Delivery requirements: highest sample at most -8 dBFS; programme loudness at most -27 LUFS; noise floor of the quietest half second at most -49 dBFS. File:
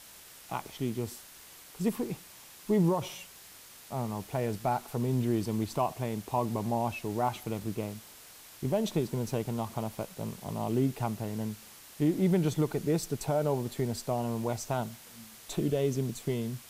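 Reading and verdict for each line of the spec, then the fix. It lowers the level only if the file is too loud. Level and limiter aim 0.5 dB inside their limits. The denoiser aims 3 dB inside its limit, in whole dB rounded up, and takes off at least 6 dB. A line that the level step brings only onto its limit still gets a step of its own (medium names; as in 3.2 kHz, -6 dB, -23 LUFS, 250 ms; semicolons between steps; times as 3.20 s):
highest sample -17.0 dBFS: pass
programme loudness -32.0 LUFS: pass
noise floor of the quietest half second -52 dBFS: pass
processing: none needed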